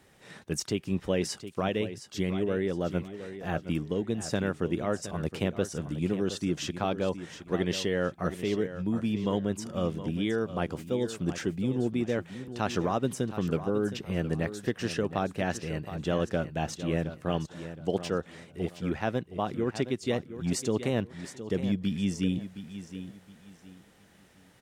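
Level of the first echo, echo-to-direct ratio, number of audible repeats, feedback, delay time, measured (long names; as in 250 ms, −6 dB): −12.0 dB, −11.5 dB, 3, 28%, 717 ms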